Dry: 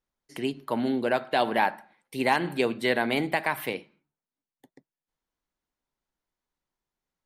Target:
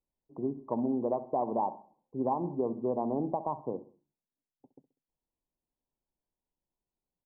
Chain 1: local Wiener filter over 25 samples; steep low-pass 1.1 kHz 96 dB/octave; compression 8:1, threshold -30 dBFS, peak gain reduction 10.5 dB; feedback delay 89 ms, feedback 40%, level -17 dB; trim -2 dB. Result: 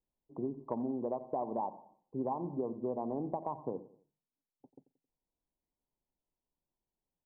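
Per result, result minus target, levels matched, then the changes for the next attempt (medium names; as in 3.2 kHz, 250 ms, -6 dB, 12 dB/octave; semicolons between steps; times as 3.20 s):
echo 24 ms late; compression: peak gain reduction +5.5 dB
change: feedback delay 65 ms, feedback 40%, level -17 dB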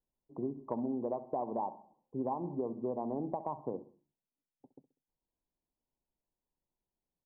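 compression: peak gain reduction +5.5 dB
change: compression 8:1, threshold -23.5 dBFS, peak gain reduction 5 dB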